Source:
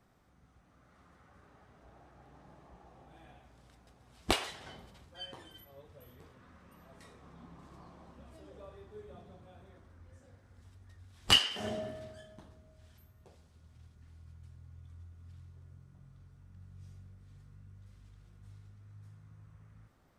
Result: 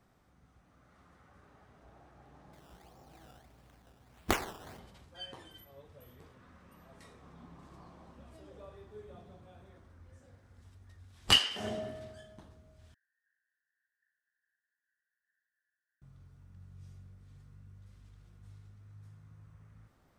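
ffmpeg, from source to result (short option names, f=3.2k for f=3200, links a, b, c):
-filter_complex "[0:a]asettb=1/sr,asplit=3[a][b][c];[a]atrim=end=2.534[d];[b]atrim=start=2.53:end=4.79,asetpts=PTS-STARTPTS,afade=t=in:d=0.004:c=qsin,afade=t=out:st=2.256:d=0.004:c=qsin,acrusher=samples=14:mix=1:aa=0.000001:lfo=1:lforange=14:lforate=1.6[e];[c]atrim=start=4.786[f];[d][e]acrossfade=d=0.004:c1=hsin:c2=qsin[g];[g][f]acrossfade=d=0.004:c1=qsin:c2=hsin,asettb=1/sr,asplit=3[h][i][j];[h]atrim=end=12.944[k];[i]atrim=start=12.94:end=16.02,asetpts=PTS-STARTPTS,afade=t=in:d=0.004:c=qsin,afade=t=out:st=3.076:d=0.004:c=qsin,asuperpass=centerf=1700:order=8:qfactor=4.9[l];[j]atrim=start=16.016[m];[k][l]acrossfade=d=0.004:c1=hsin:c2=qsin[n];[n][m]acrossfade=d=0.004:c1=qsin:c2=hsin"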